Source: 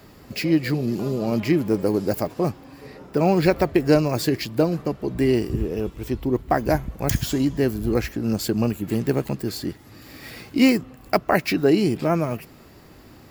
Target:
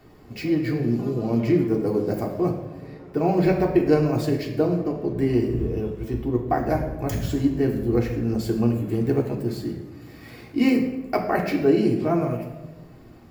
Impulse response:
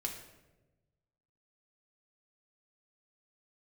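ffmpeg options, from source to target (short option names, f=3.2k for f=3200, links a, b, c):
-filter_complex "[0:a]highshelf=f=2.3k:g=-9[a];[1:a]atrim=start_sample=2205[b];[a][b]afir=irnorm=-1:irlink=0,volume=-2dB"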